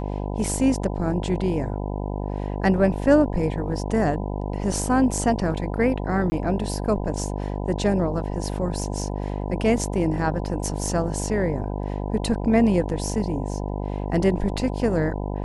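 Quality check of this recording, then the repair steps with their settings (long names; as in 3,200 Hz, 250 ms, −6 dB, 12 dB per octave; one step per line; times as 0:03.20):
mains buzz 50 Hz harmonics 20 −28 dBFS
0:06.30–0:06.32: drop-out 20 ms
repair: hum removal 50 Hz, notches 20
repair the gap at 0:06.30, 20 ms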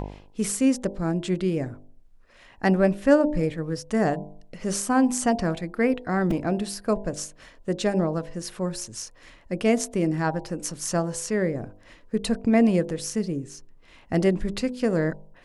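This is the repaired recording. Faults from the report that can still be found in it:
none of them is left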